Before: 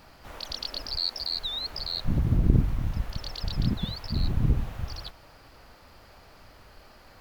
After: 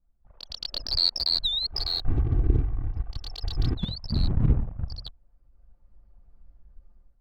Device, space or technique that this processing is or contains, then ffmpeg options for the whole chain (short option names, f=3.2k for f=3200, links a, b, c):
voice memo with heavy noise removal: -filter_complex "[0:a]asettb=1/sr,asplit=3[a][b][c];[a]atrim=end=1.724[d];[b]atrim=start=1.72:end=3.75,asetpts=PTS-STARTPTS,afade=t=in:d=0.004:c=qsin,afade=t=out:st=2.026:d=0.004:c=qsin,aecho=1:1:2.6:0.84,atrim=end_sample=89523[e];[c]atrim=start=3.746[f];[d][e]acrossfade=d=0.004:c1=hsin:c2=qsin[g];[g][f]acrossfade=d=0.004:c1=qsin:c2=hsin,anlmdn=2.51,dynaudnorm=f=500:g=3:m=15dB,volume=-7dB"